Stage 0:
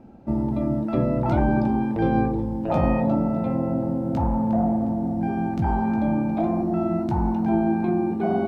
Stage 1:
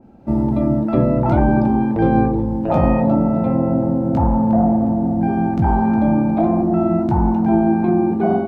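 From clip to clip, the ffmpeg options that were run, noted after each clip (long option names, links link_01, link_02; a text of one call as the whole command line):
ffmpeg -i in.wav -af "dynaudnorm=framelen=170:gausssize=3:maxgain=7dB,adynamicequalizer=threshold=0.0126:dfrequency=2100:dqfactor=0.7:tfrequency=2100:tqfactor=0.7:attack=5:release=100:ratio=0.375:range=3.5:mode=cutabove:tftype=highshelf" out.wav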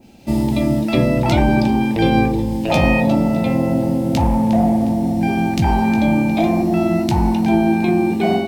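ffmpeg -i in.wav -af "aexciter=amount=9.7:drive=6.6:freq=2100" out.wav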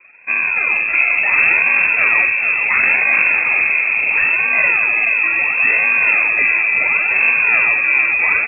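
ffmpeg -i in.wav -filter_complex "[0:a]acrusher=samples=22:mix=1:aa=0.000001:lfo=1:lforange=22:lforate=0.72,asplit=7[link_01][link_02][link_03][link_04][link_05][link_06][link_07];[link_02]adelay=429,afreqshift=-110,volume=-5.5dB[link_08];[link_03]adelay=858,afreqshift=-220,volume=-12.2dB[link_09];[link_04]adelay=1287,afreqshift=-330,volume=-19dB[link_10];[link_05]adelay=1716,afreqshift=-440,volume=-25.7dB[link_11];[link_06]adelay=2145,afreqshift=-550,volume=-32.5dB[link_12];[link_07]adelay=2574,afreqshift=-660,volume=-39.2dB[link_13];[link_01][link_08][link_09][link_10][link_11][link_12][link_13]amix=inputs=7:normalize=0,lowpass=frequency=2300:width_type=q:width=0.5098,lowpass=frequency=2300:width_type=q:width=0.6013,lowpass=frequency=2300:width_type=q:width=0.9,lowpass=frequency=2300:width_type=q:width=2.563,afreqshift=-2700" out.wav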